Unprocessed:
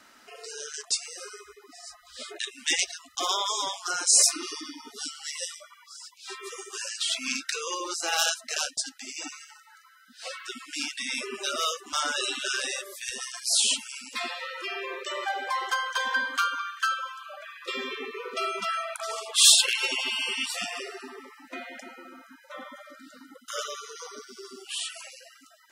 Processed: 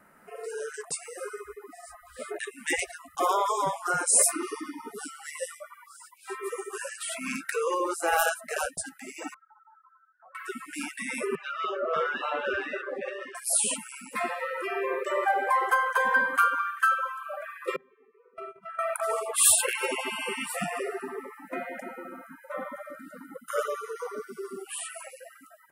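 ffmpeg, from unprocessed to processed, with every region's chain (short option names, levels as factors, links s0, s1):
-filter_complex "[0:a]asettb=1/sr,asplit=3[s0][s1][s2];[s0]atrim=end=9.344[s3];[s1]atrim=start=9.34:end=10.35,asetpts=PTS-STARTPTS,afade=t=in:d=0.004:c=qsin,afade=t=out:st=1.006:d=0.004:c=qsin,asuperpass=centerf=930:order=8:qfactor=1.5,acompressor=threshold=0.00112:ratio=4:attack=3.2:release=140:knee=1:detection=peak[s4];[s2]atrim=start=10.346[s5];[s3][s4]acrossfade=d=0.004:c1=hsin:c2=qsin[s6];[s6][s5]acrossfade=d=0.004:c1=qsin:c2=hsin,asettb=1/sr,asplit=3[s7][s8][s9];[s7]atrim=end=11.354[s10];[s8]atrim=start=11.35:end=13.35,asetpts=PTS-STARTPTS,afade=t=in:d=0.004:c=qsin,afade=t=out:st=1.996:d=0.004:c=qsin,lowpass=f=3700:w=0.5412,lowpass=f=3700:w=1.3066,acrossover=split=290|1200[s11][s12][s13];[s12]adelay=290[s14];[s11]adelay=610[s15];[s15][s14][s13]amix=inputs=3:normalize=0,atrim=end_sample=88200[s16];[s9]atrim=start=13.346[s17];[s10][s16]acrossfade=d=0.004:c1=hsin:c2=qsin[s18];[s18][s17]acrossfade=d=0.004:c1=qsin:c2=hsin,asettb=1/sr,asplit=3[s19][s20][s21];[s19]atrim=end=17.764[s22];[s20]atrim=start=17.76:end=18.79,asetpts=PTS-STARTPTS,afade=t=in:d=0.004:c=qsin,afade=t=out:st=1.026:d=0.004:c=qsin,lowpass=f=2100:p=1,agate=range=0.0282:threshold=0.0282:ratio=16:release=100:detection=peak,acompressor=threshold=0.01:ratio=16:attack=3.2:release=140:knee=1:detection=peak[s23];[s21]atrim=start=18.786[s24];[s22][s23]acrossfade=d=0.004:c1=hsin:c2=qsin[s25];[s25][s24]acrossfade=d=0.004:c1=qsin:c2=hsin,firequalizer=gain_entry='entry(110,0);entry(160,13);entry(250,-7);entry(460,1);entry(690,-3);entry(2100,-8);entry(3400,-24);entry(5900,-24);entry(9600,-4)':delay=0.05:min_phase=1,dynaudnorm=f=130:g=5:m=2.24,volume=1.33"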